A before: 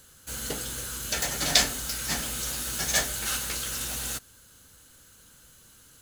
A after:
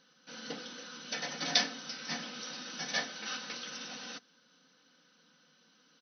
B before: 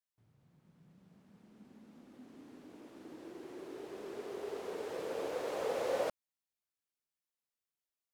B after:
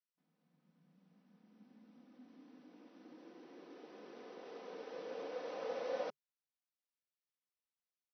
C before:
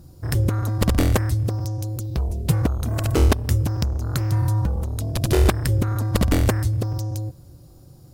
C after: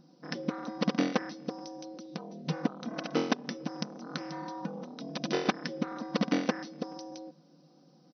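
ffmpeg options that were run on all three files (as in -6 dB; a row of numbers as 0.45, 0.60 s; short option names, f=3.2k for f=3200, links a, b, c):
-af "bandreject=f=410:w=12,aecho=1:1:4:0.43,afftfilt=real='re*between(b*sr/4096,140,6100)':imag='im*between(b*sr/4096,140,6100)':win_size=4096:overlap=0.75,volume=-7dB"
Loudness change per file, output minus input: -9.0, -6.0, -12.5 LU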